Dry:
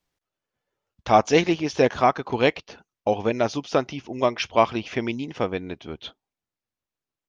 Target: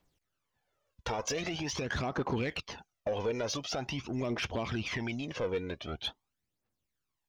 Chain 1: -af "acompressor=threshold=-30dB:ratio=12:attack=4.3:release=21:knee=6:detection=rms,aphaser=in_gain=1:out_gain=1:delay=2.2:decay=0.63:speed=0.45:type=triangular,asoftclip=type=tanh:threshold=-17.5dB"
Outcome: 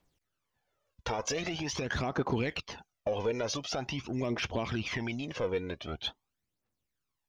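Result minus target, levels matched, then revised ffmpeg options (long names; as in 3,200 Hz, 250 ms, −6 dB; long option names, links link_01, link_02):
soft clipping: distortion −9 dB
-af "acompressor=threshold=-30dB:ratio=12:attack=4.3:release=21:knee=6:detection=rms,aphaser=in_gain=1:out_gain=1:delay=2.2:decay=0.63:speed=0.45:type=triangular,asoftclip=type=tanh:threshold=-24dB"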